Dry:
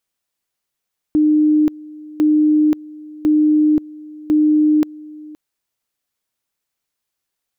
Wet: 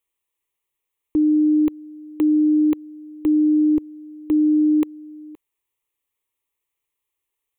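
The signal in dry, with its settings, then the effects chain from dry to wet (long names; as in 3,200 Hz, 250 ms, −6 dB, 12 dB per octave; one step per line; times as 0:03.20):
tone at two levels in turn 304 Hz −10 dBFS, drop 22 dB, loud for 0.53 s, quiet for 0.52 s, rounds 4
phaser with its sweep stopped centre 1,000 Hz, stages 8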